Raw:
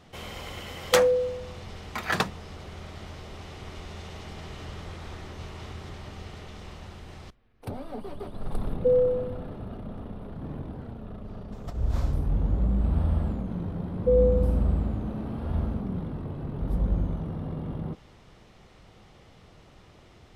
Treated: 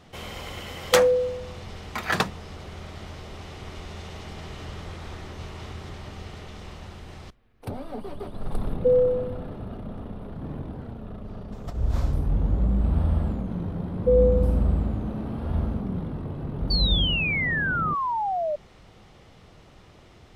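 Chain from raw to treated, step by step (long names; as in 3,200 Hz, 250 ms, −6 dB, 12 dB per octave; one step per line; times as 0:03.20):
sound drawn into the spectrogram fall, 0:16.70–0:18.56, 580–4,600 Hz −28 dBFS
level +2 dB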